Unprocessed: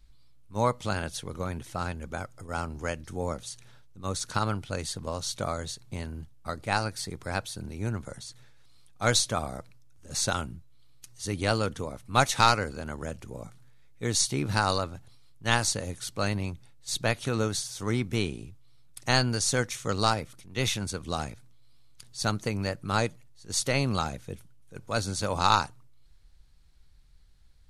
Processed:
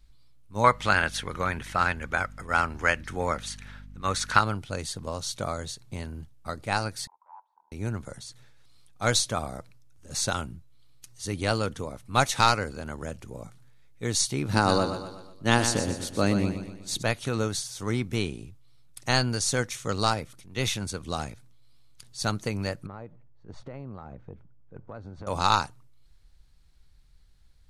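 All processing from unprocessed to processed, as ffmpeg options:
ffmpeg -i in.wav -filter_complex "[0:a]asettb=1/sr,asplit=3[link_01][link_02][link_03];[link_01]atrim=end=0.644[link_04];[link_02]atrim=start=0.64:end=4.41,asetpts=PTS-STARTPTS,afade=type=in:duration=0.004:curve=qsin,afade=type=out:start_time=3.766:duration=0.004:curve=qsin,equalizer=frequency=1800:width_type=o:width=1.9:gain=14.5,aeval=exprs='val(0)+0.00631*(sin(2*PI*50*n/s)+sin(2*PI*2*50*n/s)/2+sin(2*PI*3*50*n/s)/3+sin(2*PI*4*50*n/s)/4+sin(2*PI*5*50*n/s)/5)':channel_layout=same[link_05];[link_03]atrim=start=4.406[link_06];[link_04][link_05]acrossfade=duration=0.004:curve1=hsin:curve2=qsin[link_07];[link_07][link_06]acrossfade=duration=0.004:curve1=qsin:curve2=hsin,asettb=1/sr,asplit=3[link_08][link_09][link_10];[link_08]atrim=end=7.074[link_11];[link_09]atrim=start=7.07:end=7.72,asetpts=PTS-STARTPTS,afade=type=in:duration=0.004:curve=qsin,afade=type=out:start_time=0.646:duration=0.004:curve=qsin,aeval=exprs='0.0376*(abs(mod(val(0)/0.0376+3,4)-2)-1)':channel_layout=same,asuperpass=centerf=930:order=4:qfactor=5.4[link_12];[link_10]atrim=start=7.716[link_13];[link_11][link_12]acrossfade=duration=0.004:curve1=hsin:curve2=qsin[link_14];[link_14][link_13]acrossfade=duration=0.004:curve1=qsin:curve2=hsin,asettb=1/sr,asplit=3[link_15][link_16][link_17];[link_15]atrim=end=14.534[link_18];[link_16]atrim=start=14.53:end=17.03,asetpts=PTS-STARTPTS,afade=type=in:duration=0.004:curve=qsin,afade=type=out:start_time=2.496:duration=0.004:curve=qsin,equalizer=frequency=290:width_type=o:width=1.8:gain=10,aecho=1:1:122|244|366|488|610:0.355|0.17|0.0817|0.0392|0.0188,atrim=end_sample=110250[link_19];[link_17]atrim=start=17.026[link_20];[link_18][link_19]acrossfade=duration=0.004:curve1=hsin:curve2=qsin[link_21];[link_21][link_20]acrossfade=duration=0.004:curve1=qsin:curve2=hsin,asettb=1/sr,asplit=3[link_22][link_23][link_24];[link_22]atrim=end=22.864[link_25];[link_23]atrim=start=22.86:end=25.27,asetpts=PTS-STARTPTS,afade=type=in:duration=0.004:curve=qsin,afade=type=out:start_time=2.406:duration=0.004:curve=qsin,lowpass=1100,acompressor=threshold=-36dB:ratio=8:attack=3.2:release=140:knee=1:detection=peak[link_26];[link_24]atrim=start=25.266[link_27];[link_25][link_26]acrossfade=duration=0.004:curve1=hsin:curve2=qsin[link_28];[link_28][link_27]acrossfade=duration=0.004:curve1=qsin:curve2=hsin" out.wav

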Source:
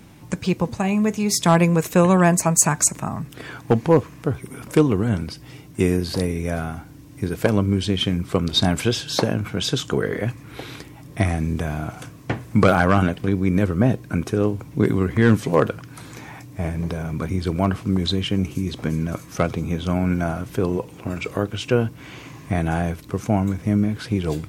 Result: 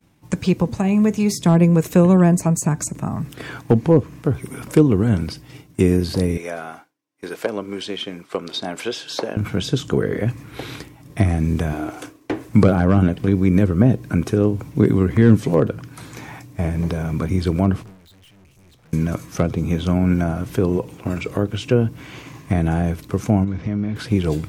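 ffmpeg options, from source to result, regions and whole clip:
ffmpeg -i in.wav -filter_complex "[0:a]asettb=1/sr,asplit=3[link_01][link_02][link_03];[link_01]atrim=end=6.374[link_04];[link_02]atrim=start=6.37:end=9.37,asetpts=PTS-STARTPTS,afade=type=in:duration=0.004:curve=qsin,afade=type=out:start_time=2.996:duration=0.004:curve=qsin,highpass=500,highshelf=frequency=7800:gain=-8[link_05];[link_03]atrim=start=9.366[link_06];[link_04][link_05]acrossfade=duration=0.004:curve1=hsin:curve2=qsin[link_07];[link_07][link_06]acrossfade=duration=0.004:curve1=qsin:curve2=hsin,asettb=1/sr,asplit=3[link_08][link_09][link_10];[link_08]atrim=end=11.734[link_11];[link_09]atrim=start=11.73:end=12.49,asetpts=PTS-STARTPTS,afade=type=in:duration=0.004:curve=qsin,afade=type=out:start_time=0.756:duration=0.004:curve=qsin,lowshelf=frequency=240:width_type=q:width=3:gain=-9,asoftclip=type=hard:threshold=-19dB[link_12];[link_10]atrim=start=12.486[link_13];[link_11][link_12]acrossfade=duration=0.004:curve1=hsin:curve2=qsin[link_14];[link_14][link_13]acrossfade=duration=0.004:curve1=qsin:curve2=hsin,asettb=1/sr,asplit=3[link_15][link_16][link_17];[link_15]atrim=end=17.824[link_18];[link_16]atrim=start=17.82:end=18.93,asetpts=PTS-STARTPTS,afade=type=in:duration=0.004:curve=qsin,afade=type=out:start_time=1.106:duration=0.004:curve=qsin,equalizer=frequency=300:width=1.4:gain=-10.5,aeval=exprs='(tanh(126*val(0)+0.25)-tanh(0.25))/126':channel_layout=same[link_19];[link_17]atrim=start=18.926[link_20];[link_18][link_19]acrossfade=duration=0.004:curve1=hsin:curve2=qsin[link_21];[link_21][link_20]acrossfade=duration=0.004:curve1=qsin:curve2=hsin,asettb=1/sr,asplit=3[link_22][link_23][link_24];[link_22]atrim=end=23.444[link_25];[link_23]atrim=start=23.44:end=23.96,asetpts=PTS-STARTPTS,afade=type=in:duration=0.004:curve=qsin,afade=type=out:start_time=0.516:duration=0.004:curve=qsin,lowpass=frequency=5000:width=0.5412,lowpass=frequency=5000:width=1.3066,acompressor=threshold=-24dB:ratio=3:attack=3.2:release=140:knee=1:detection=peak[link_26];[link_24]atrim=start=23.956[link_27];[link_25][link_26]acrossfade=duration=0.004:curve1=hsin:curve2=qsin[link_28];[link_28][link_27]acrossfade=duration=0.004:curve1=qsin:curve2=hsin,agate=range=-33dB:threshold=-35dB:ratio=3:detection=peak,acrossover=split=500[link_29][link_30];[link_30]acompressor=threshold=-35dB:ratio=2.5[link_31];[link_29][link_31]amix=inputs=2:normalize=0,volume=4dB" out.wav

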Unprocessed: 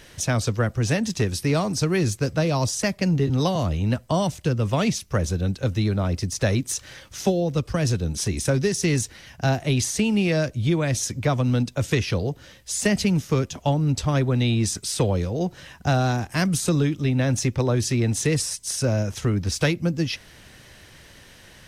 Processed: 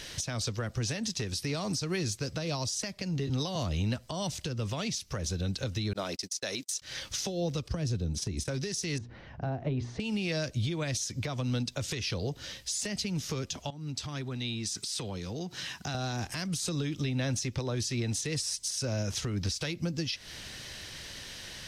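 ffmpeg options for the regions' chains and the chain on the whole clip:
ffmpeg -i in.wav -filter_complex "[0:a]asettb=1/sr,asplit=3[link_01][link_02][link_03];[link_01]atrim=end=5.934[link_04];[link_02]atrim=start=5.93:end=6.82,asetpts=PTS-STARTPTS,afade=type=in:duration=0.004:curve=qsin,afade=type=out:start_time=0.886:duration=0.004:curve=qsin,highpass=310,agate=range=-45dB:threshold=-36dB:ratio=16:release=100:detection=peak,highshelf=frequency=4300:gain=6.5[link_05];[link_03]atrim=start=6.816[link_06];[link_04][link_05]acrossfade=duration=0.004:curve1=hsin:curve2=qsin[link_07];[link_07][link_06]acrossfade=duration=0.004:curve1=qsin:curve2=hsin,asettb=1/sr,asplit=3[link_08][link_09][link_10];[link_08]atrim=end=7.684[link_11];[link_09]atrim=start=7.68:end=8.48,asetpts=PTS-STARTPTS,afade=type=in:duration=0.004:curve=qsin,afade=type=out:start_time=0.796:duration=0.004:curve=qsin,highpass=frequency=55:width=0.5412,highpass=frequency=55:width=1.3066,tiltshelf=frequency=650:gain=5.5,agate=range=-13dB:threshold=-31dB:ratio=16:release=100:detection=peak[link_12];[link_10]atrim=start=8.476[link_13];[link_11][link_12]acrossfade=duration=0.004:curve1=hsin:curve2=qsin[link_14];[link_14][link_13]acrossfade=duration=0.004:curve1=qsin:curve2=hsin,asettb=1/sr,asplit=3[link_15][link_16][link_17];[link_15]atrim=end=8.984[link_18];[link_16]atrim=start=8.98:end=10,asetpts=PTS-STARTPTS,afade=type=in:duration=0.004:curve=qsin,afade=type=out:start_time=1.016:duration=0.004:curve=qsin,acompressor=mode=upward:threshold=-37dB:ratio=2.5:attack=3.2:release=140:knee=2.83:detection=peak,lowpass=1000,bandreject=frequency=60:width_type=h:width=6,bandreject=frequency=120:width_type=h:width=6,bandreject=frequency=180:width_type=h:width=6,bandreject=frequency=240:width_type=h:width=6,bandreject=frequency=300:width_type=h:width=6,bandreject=frequency=360:width_type=h:width=6,bandreject=frequency=420:width_type=h:width=6[link_19];[link_17]atrim=start=9.996[link_20];[link_18][link_19]acrossfade=duration=0.004:curve1=hsin:curve2=qsin[link_21];[link_21][link_20]acrossfade=duration=0.004:curve1=qsin:curve2=hsin,asettb=1/sr,asplit=3[link_22][link_23][link_24];[link_22]atrim=end=13.704[link_25];[link_23]atrim=start=13.7:end=15.95,asetpts=PTS-STARTPTS,afade=type=in:duration=0.004:curve=qsin,afade=type=out:start_time=2.246:duration=0.004:curve=qsin,highpass=120,equalizer=frequency=550:width_type=o:width=0.59:gain=-7,acompressor=threshold=-34dB:ratio=6:attack=3.2:release=140:knee=1:detection=peak[link_26];[link_24]atrim=start=15.946[link_27];[link_25][link_26]acrossfade=duration=0.004:curve1=hsin:curve2=qsin[link_28];[link_28][link_27]acrossfade=duration=0.004:curve1=qsin:curve2=hsin,equalizer=frequency=4600:width_type=o:width=1.6:gain=10,acompressor=threshold=-25dB:ratio=6,alimiter=limit=-23dB:level=0:latency=1:release=223" out.wav

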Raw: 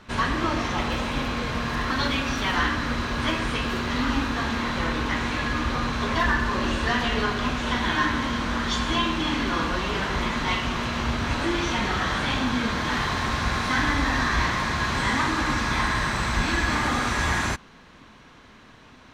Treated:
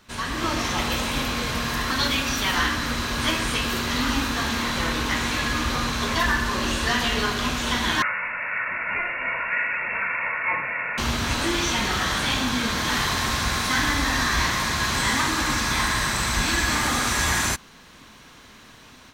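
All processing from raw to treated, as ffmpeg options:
ffmpeg -i in.wav -filter_complex "[0:a]asettb=1/sr,asplit=3[link_01][link_02][link_03];[link_01]atrim=end=8.024[link_04];[link_02]atrim=start=8.02:end=10.98,asetpts=PTS-STARTPTS,afade=type=in:duration=0.004:curve=qsin,afade=type=out:start_time=2.956:duration=0.004:curve=qsin,highpass=frequency=560:width=0.5412,highpass=frequency=560:width=1.3066,aecho=1:1:2.4:0.58,atrim=end_sample=130536,lowpass=frequency=2600:width_type=q:width=0.5098,lowpass=frequency=2600:width_type=q:width=0.6013,lowpass=frequency=2600:width_type=q:width=0.9,lowpass=frequency=2600:width_type=q:width=2.563,afreqshift=-3100[link_05];[link_03]atrim=start=10.976[link_06];[link_04][link_05]acrossfade=duration=0.004:curve1=hsin:curve2=qsin[link_07];[link_07][link_06]acrossfade=duration=0.004:curve1=qsin:curve2=hsin,aemphasis=mode=production:type=75fm,dynaudnorm=framelen=230:gausssize=3:maxgain=8dB,volume=-7dB" out.wav

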